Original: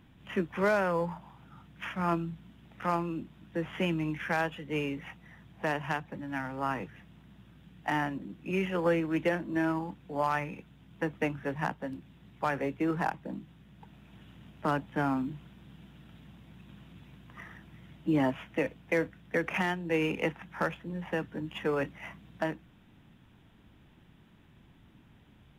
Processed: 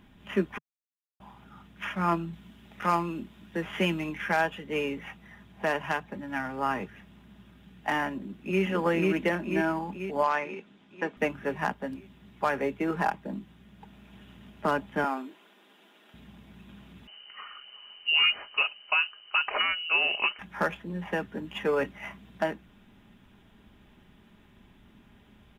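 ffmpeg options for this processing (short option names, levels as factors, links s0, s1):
-filter_complex "[0:a]asettb=1/sr,asplit=3[s0][s1][s2];[s0]atrim=end=2.334[s3];[s1]atrim=start=2.33:end=4.09,asetpts=PTS-STARTPTS,afade=t=in:d=0.004:c=qsin,afade=t=out:st=1.756:d=0.004:c=qsin,highshelf=f=2200:g=4.5[s4];[s2]atrim=start=4.086[s5];[s3][s4]acrossfade=d=0.004:c1=hsin:c2=qsin[s6];[s6][s5]acrossfade=d=0.004:c1=qsin:c2=hsin,asplit=2[s7][s8];[s8]afade=t=in:st=8.17:d=0.01,afade=t=out:st=8.63:d=0.01,aecho=0:1:490|980|1470|1960|2450|2940|3430|3920|4410:0.944061|0.566437|0.339862|0.203917|0.12235|0.0734102|0.0440461|0.0264277|0.0158566[s9];[s7][s9]amix=inputs=2:normalize=0,asettb=1/sr,asplit=3[s10][s11][s12];[s10]atrim=end=10.234[s13];[s11]atrim=start=10.23:end=11.17,asetpts=PTS-STARTPTS,afade=t=in:d=0.004:c=qsin,afade=t=out:st=0.936:d=0.004:c=qsin,highpass=240,lowpass=6400[s14];[s12]atrim=start=11.166[s15];[s13][s14]acrossfade=d=0.004:c1=hsin:c2=qsin[s16];[s16][s15]acrossfade=d=0.004:c1=qsin:c2=hsin,asettb=1/sr,asplit=3[s17][s18][s19];[s17]atrim=end=15.044[s20];[s18]atrim=start=15.04:end=16.14,asetpts=PTS-STARTPTS,afade=t=in:d=0.004:c=qsin,afade=t=out:st=1.096:d=0.004:c=qsin,highpass=f=340:w=0.5412,highpass=f=340:w=1.3066[s21];[s19]atrim=start=16.136[s22];[s20][s21]acrossfade=d=0.004:c1=hsin:c2=qsin[s23];[s23][s22]acrossfade=d=0.004:c1=qsin:c2=hsin,asettb=1/sr,asplit=3[s24][s25][s26];[s24]atrim=end=17.074[s27];[s25]atrim=start=17.07:end=20.39,asetpts=PTS-STARTPTS,afade=t=in:d=0.004:c=qsin,afade=t=out:st=3.316:d=0.004:c=qsin,lowpass=f=2600:t=q:w=0.5098,lowpass=f=2600:t=q:w=0.6013,lowpass=f=2600:t=q:w=0.9,lowpass=f=2600:t=q:w=2.563,afreqshift=-3100[s28];[s26]atrim=start=20.386[s29];[s27][s28]acrossfade=d=0.004:c1=hsin:c2=qsin[s30];[s30][s29]acrossfade=d=0.004:c1=qsin:c2=hsin,asplit=3[s31][s32][s33];[s31]atrim=end=0.58,asetpts=PTS-STARTPTS,afade=t=out:st=0.576:d=0.004:c=hsin[s34];[s32]atrim=start=0.58:end=1.2,asetpts=PTS-STARTPTS,volume=0[s35];[s33]atrim=start=1.2,asetpts=PTS-STARTPTS,afade=t=in:d=0.004:c=hsin[s36];[s34][s35][s36]concat=n=3:v=0:a=1,equalizer=f=150:w=5:g=-10.5,aecho=1:1:4.9:0.37,volume=1.41"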